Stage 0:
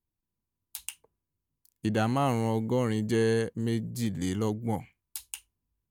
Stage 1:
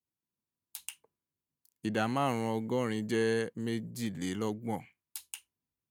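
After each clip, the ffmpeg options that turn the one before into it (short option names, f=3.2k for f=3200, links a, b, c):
-af "highpass=140,adynamicequalizer=threshold=0.00447:dfrequency=2000:dqfactor=0.78:tfrequency=2000:tqfactor=0.78:attack=5:release=100:ratio=0.375:range=2:mode=boostabove:tftype=bell,volume=-4dB"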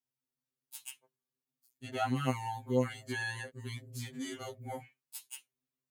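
-af "afftfilt=real='re*2.45*eq(mod(b,6),0)':imag='im*2.45*eq(mod(b,6),0)':win_size=2048:overlap=0.75"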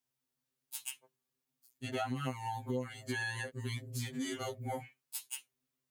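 -af "acompressor=threshold=-38dB:ratio=6,volume=4.5dB"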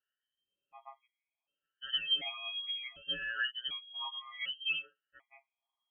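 -af "afftfilt=real='re*pow(10,20/40*sin(2*PI*(0.51*log(max(b,1)*sr/1024/100)/log(2)-(-1.2)*(pts-256)/sr)))':imag='im*pow(10,20/40*sin(2*PI*(0.51*log(max(b,1)*sr/1024/100)/log(2)-(-1.2)*(pts-256)/sr)))':win_size=1024:overlap=0.75,lowpass=f=2.9k:t=q:w=0.5098,lowpass=f=2.9k:t=q:w=0.6013,lowpass=f=2.9k:t=q:w=0.9,lowpass=f=2.9k:t=q:w=2.563,afreqshift=-3400,afftfilt=real='re*gt(sin(2*PI*0.67*pts/sr)*(1-2*mod(floor(b*sr/1024/640),2)),0)':imag='im*gt(sin(2*PI*0.67*pts/sr)*(1-2*mod(floor(b*sr/1024/640),2)),0)':win_size=1024:overlap=0.75"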